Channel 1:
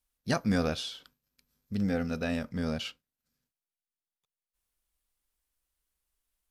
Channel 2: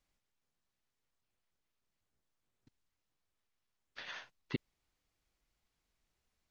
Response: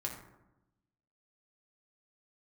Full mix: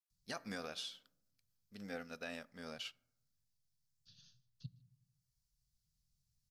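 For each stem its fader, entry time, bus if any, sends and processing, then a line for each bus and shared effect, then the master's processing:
-4.0 dB, 0.00 s, send -20.5 dB, no echo send, high-pass 840 Hz 6 dB/octave; upward expansion 1.5:1, over -51 dBFS
-2.0 dB, 0.10 s, send -12.5 dB, echo send -22.5 dB, elliptic band-stop 150–4700 Hz, stop band 40 dB; three bands compressed up and down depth 40%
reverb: on, RT60 0.95 s, pre-delay 4 ms
echo: delay 153 ms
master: peak limiter -31 dBFS, peak gain reduction 9 dB

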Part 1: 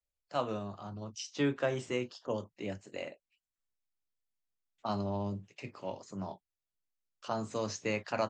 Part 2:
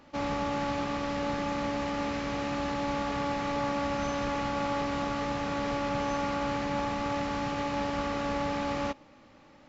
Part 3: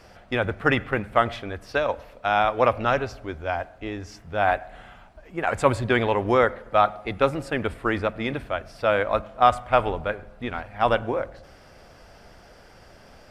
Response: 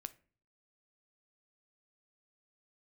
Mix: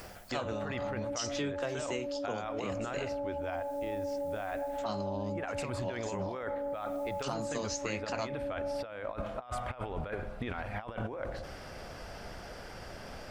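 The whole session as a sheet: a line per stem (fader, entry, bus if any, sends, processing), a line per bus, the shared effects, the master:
+2.5 dB, 0.00 s, no bus, no send, treble shelf 4.6 kHz +11.5 dB; upward compressor, threshold -40 dBFS
-7.0 dB, 0.30 s, bus A, no send, peaking EQ 600 Hz +8 dB 0.26 oct; loudest bins only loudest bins 4
0.0 dB, 0.00 s, bus A, no send, auto duck -10 dB, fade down 0.25 s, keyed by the first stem
bus A: 0.0 dB, compressor with a negative ratio -34 dBFS, ratio -1; peak limiter -24 dBFS, peak gain reduction 6 dB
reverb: none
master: compression 5:1, threshold -32 dBFS, peak gain reduction 9 dB

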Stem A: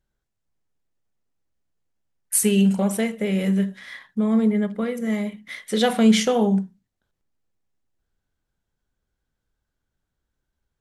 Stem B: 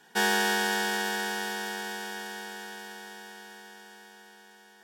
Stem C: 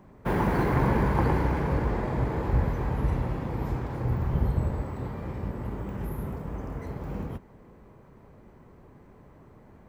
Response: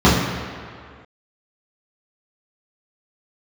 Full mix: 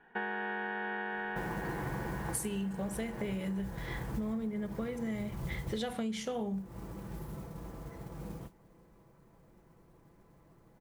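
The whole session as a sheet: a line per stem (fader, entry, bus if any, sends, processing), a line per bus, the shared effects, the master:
-4.5 dB, 0.00 s, no send, level-controlled noise filter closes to 2.6 kHz, open at -19 dBFS
-3.0 dB, 0.00 s, no send, inverse Chebyshev low-pass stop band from 5.6 kHz, stop band 50 dB
-10.0 dB, 1.10 s, no send, comb 6 ms, depth 46%; modulation noise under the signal 20 dB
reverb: none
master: compression 10:1, threshold -33 dBFS, peak gain reduction 18 dB

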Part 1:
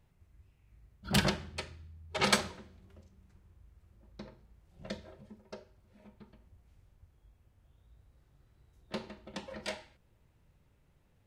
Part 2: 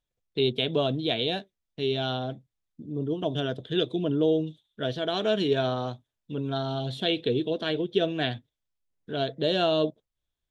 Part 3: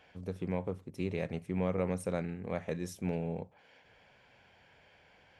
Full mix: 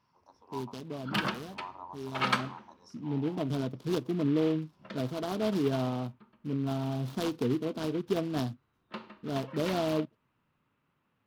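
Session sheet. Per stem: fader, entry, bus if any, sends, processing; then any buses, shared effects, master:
-8.0 dB, 0.00 s, no send, high-pass 360 Hz 6 dB/octave; high-order bell 1.8 kHz +10.5 dB
2.02 s -20 dB -> 2.65 s -10.5 dB, 0.15 s, no send, delay time shaken by noise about 2 kHz, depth 0.085 ms
+2.0 dB, 0.00 s, no send, spectral gate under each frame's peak -10 dB weak; two resonant band-passes 2.3 kHz, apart 2.5 oct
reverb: none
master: graphic EQ 125/250/1000/2000/4000/8000 Hz +7/+11/+7/-6/+4/-8 dB

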